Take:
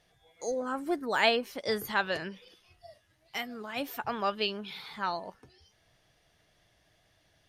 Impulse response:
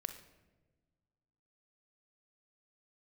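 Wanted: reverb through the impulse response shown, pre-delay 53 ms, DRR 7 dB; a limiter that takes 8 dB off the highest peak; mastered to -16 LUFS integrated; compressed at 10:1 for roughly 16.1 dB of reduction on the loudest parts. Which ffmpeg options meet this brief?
-filter_complex "[0:a]acompressor=threshold=-36dB:ratio=10,alimiter=level_in=7.5dB:limit=-24dB:level=0:latency=1,volume=-7.5dB,asplit=2[a][b];[1:a]atrim=start_sample=2205,adelay=53[c];[b][c]afir=irnorm=-1:irlink=0,volume=-5.5dB[d];[a][d]amix=inputs=2:normalize=0,volume=26.5dB"

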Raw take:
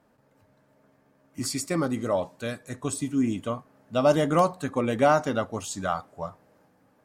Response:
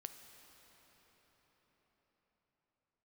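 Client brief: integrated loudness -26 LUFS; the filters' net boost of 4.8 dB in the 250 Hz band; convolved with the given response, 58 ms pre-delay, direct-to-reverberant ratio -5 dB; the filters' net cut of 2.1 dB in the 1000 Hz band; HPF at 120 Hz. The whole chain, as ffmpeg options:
-filter_complex "[0:a]highpass=120,equalizer=f=250:t=o:g=6,equalizer=f=1k:t=o:g=-3.5,asplit=2[a][b];[1:a]atrim=start_sample=2205,adelay=58[c];[b][c]afir=irnorm=-1:irlink=0,volume=9.5dB[d];[a][d]amix=inputs=2:normalize=0,volume=-7dB"

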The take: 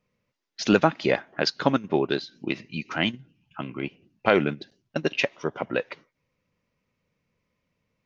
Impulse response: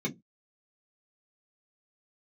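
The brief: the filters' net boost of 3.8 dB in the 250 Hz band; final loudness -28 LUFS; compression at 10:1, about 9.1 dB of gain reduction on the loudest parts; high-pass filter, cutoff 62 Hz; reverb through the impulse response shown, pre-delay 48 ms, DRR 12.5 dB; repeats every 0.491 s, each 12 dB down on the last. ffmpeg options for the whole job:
-filter_complex "[0:a]highpass=62,equalizer=f=250:t=o:g=5,acompressor=threshold=-20dB:ratio=10,aecho=1:1:491|982|1473:0.251|0.0628|0.0157,asplit=2[a][b];[1:a]atrim=start_sample=2205,adelay=48[c];[b][c]afir=irnorm=-1:irlink=0,volume=-17.5dB[d];[a][d]amix=inputs=2:normalize=0"

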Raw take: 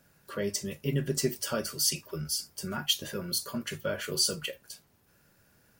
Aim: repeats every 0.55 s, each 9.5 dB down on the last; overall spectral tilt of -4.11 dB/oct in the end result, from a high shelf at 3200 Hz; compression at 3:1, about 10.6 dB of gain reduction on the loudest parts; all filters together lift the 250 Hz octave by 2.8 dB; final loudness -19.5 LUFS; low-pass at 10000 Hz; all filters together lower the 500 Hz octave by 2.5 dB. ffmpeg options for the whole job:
-af "lowpass=10k,equalizer=f=250:t=o:g=5,equalizer=f=500:t=o:g=-5,highshelf=f=3.2k:g=-9,acompressor=threshold=-38dB:ratio=3,aecho=1:1:550|1100|1650|2200:0.335|0.111|0.0365|0.012,volume=21dB"

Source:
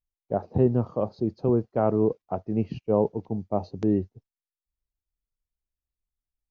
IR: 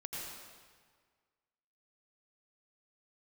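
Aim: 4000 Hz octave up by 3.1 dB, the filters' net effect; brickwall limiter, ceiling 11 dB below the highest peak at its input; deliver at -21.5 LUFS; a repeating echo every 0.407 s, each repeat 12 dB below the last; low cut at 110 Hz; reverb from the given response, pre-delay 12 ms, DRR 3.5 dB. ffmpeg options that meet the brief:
-filter_complex "[0:a]highpass=110,equalizer=f=4k:t=o:g=4,alimiter=limit=-21dB:level=0:latency=1,aecho=1:1:407|814|1221:0.251|0.0628|0.0157,asplit=2[a][b];[1:a]atrim=start_sample=2205,adelay=12[c];[b][c]afir=irnorm=-1:irlink=0,volume=-4dB[d];[a][d]amix=inputs=2:normalize=0,volume=11dB"

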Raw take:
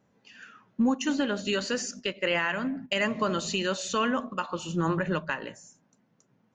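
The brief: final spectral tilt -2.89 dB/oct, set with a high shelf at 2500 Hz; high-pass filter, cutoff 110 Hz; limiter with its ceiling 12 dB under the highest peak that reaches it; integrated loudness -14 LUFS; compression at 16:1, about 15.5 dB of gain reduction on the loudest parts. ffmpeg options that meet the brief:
-af "highpass=110,highshelf=f=2.5k:g=7.5,acompressor=threshold=-36dB:ratio=16,volume=29dB,alimiter=limit=-4.5dB:level=0:latency=1"

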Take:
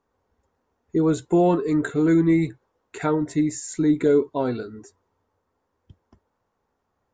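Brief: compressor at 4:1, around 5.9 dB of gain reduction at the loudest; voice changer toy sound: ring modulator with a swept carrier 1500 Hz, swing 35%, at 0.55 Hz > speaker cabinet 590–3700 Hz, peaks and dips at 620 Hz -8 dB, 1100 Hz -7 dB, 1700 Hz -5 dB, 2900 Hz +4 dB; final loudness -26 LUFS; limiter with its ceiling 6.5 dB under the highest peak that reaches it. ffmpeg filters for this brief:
-af "acompressor=threshold=-21dB:ratio=4,alimiter=limit=-18.5dB:level=0:latency=1,aeval=exprs='val(0)*sin(2*PI*1500*n/s+1500*0.35/0.55*sin(2*PI*0.55*n/s))':c=same,highpass=590,equalizer=f=620:t=q:w=4:g=-8,equalizer=f=1.1k:t=q:w=4:g=-7,equalizer=f=1.7k:t=q:w=4:g=-5,equalizer=f=2.9k:t=q:w=4:g=4,lowpass=f=3.7k:w=0.5412,lowpass=f=3.7k:w=1.3066,volume=5.5dB"

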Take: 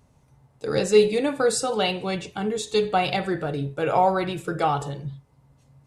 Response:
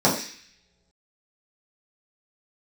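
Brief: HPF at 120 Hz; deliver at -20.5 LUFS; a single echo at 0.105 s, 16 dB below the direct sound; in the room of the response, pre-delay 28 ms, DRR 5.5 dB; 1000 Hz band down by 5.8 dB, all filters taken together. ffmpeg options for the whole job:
-filter_complex "[0:a]highpass=120,equalizer=f=1k:t=o:g=-9,aecho=1:1:105:0.158,asplit=2[a][b];[1:a]atrim=start_sample=2205,adelay=28[c];[b][c]afir=irnorm=-1:irlink=0,volume=-24dB[d];[a][d]amix=inputs=2:normalize=0,volume=1.5dB"

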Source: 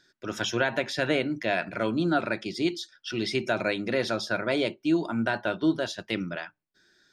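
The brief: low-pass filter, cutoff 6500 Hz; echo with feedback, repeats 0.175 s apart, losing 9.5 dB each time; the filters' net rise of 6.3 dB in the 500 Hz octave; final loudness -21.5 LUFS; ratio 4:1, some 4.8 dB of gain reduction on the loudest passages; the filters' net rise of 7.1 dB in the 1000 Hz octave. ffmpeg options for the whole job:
-af "lowpass=6.5k,equalizer=f=500:t=o:g=5.5,equalizer=f=1k:t=o:g=8.5,acompressor=threshold=-21dB:ratio=4,aecho=1:1:175|350|525|700:0.335|0.111|0.0365|0.012,volume=5dB"

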